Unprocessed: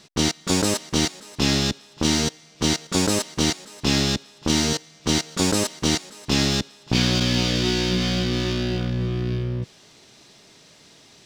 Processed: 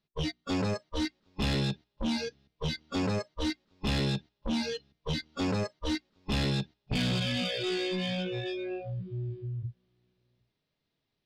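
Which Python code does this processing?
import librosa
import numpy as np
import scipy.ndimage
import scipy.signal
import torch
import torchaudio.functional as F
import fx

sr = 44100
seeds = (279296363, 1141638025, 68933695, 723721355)

p1 = fx.low_shelf(x, sr, hz=240.0, db=6.0)
p2 = fx.hum_notches(p1, sr, base_hz=60, count=6)
p3 = p2 + fx.echo_single(p2, sr, ms=762, db=-16.0, dry=0)
p4 = fx.noise_reduce_blind(p3, sr, reduce_db=29)
p5 = scipy.signal.sosfilt(scipy.signal.butter(4, 4400.0, 'lowpass', fs=sr, output='sos'), p4)
p6 = fx.low_shelf(p5, sr, hz=70.0, db=9.0)
p7 = 10.0 ** (-22.0 / 20.0) * np.tanh(p6 / 10.0 ** (-22.0 / 20.0))
y = p7 * librosa.db_to_amplitude(-3.0)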